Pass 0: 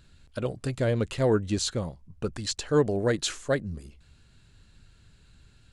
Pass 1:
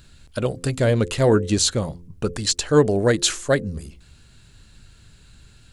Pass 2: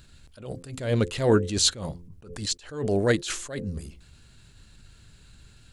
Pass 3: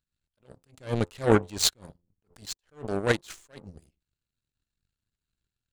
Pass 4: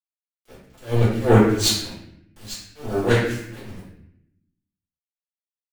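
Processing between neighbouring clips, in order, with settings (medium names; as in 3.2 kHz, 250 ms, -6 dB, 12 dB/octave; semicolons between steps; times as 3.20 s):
treble shelf 6.2 kHz +7 dB; de-hum 86.72 Hz, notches 6; trim +7 dB
dynamic bell 3.3 kHz, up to +4 dB, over -35 dBFS, Q 0.98; attacks held to a fixed rise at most 110 dB/s; trim -2.5 dB
power-law waveshaper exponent 2; trim +5.5 dB
bit crusher 8-bit; reverberation RT60 0.75 s, pre-delay 3 ms, DRR -14 dB; trim -8 dB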